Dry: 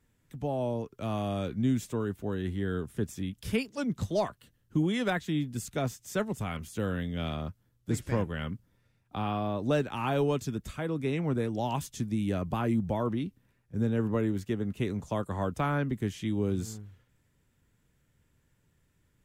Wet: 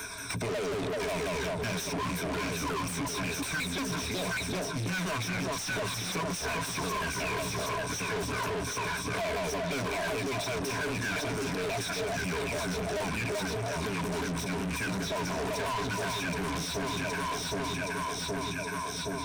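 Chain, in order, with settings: repeated pitch sweeps -8 st, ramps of 0.18 s; pre-emphasis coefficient 0.8; formant shift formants -2 st; ripple EQ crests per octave 1.6, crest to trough 17 dB; echo with dull and thin repeats by turns 0.385 s, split 1000 Hz, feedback 72%, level -6 dB; reverse; compressor, threshold -43 dBFS, peak gain reduction 11 dB; reverse; de-hum 51.85 Hz, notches 6; overdrive pedal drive 37 dB, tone 4300 Hz, clips at -31 dBFS; three-band squash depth 70%; gain +5.5 dB

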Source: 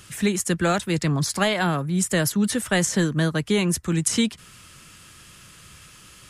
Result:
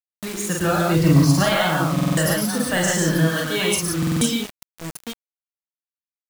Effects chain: 0.89–1.45 low shelf 440 Hz +7 dB; tapped delay 43/51/110/146/175/887 ms -4/-5.5/-4/-3/-4/-8 dB; spectral noise reduction 10 dB; 3.28–4.06 tilt shelf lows -4 dB, about 850 Hz; FDN reverb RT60 0.48 s, low-frequency decay 1.35×, high-frequency decay 0.5×, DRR 15.5 dB; bit-crush 5-bit; stuck buffer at 1.94/3.98, samples 2048, times 4; gain -1.5 dB

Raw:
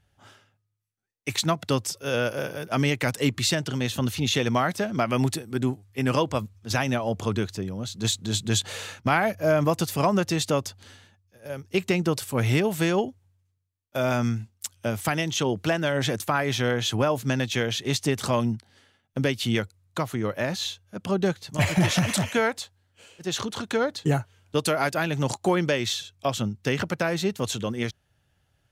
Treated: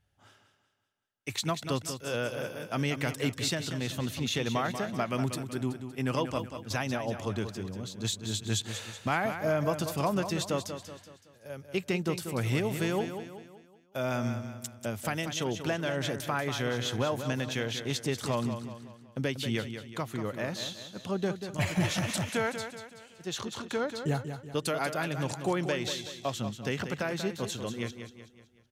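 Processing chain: feedback echo 0.188 s, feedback 45%, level -9 dB; gain -7 dB

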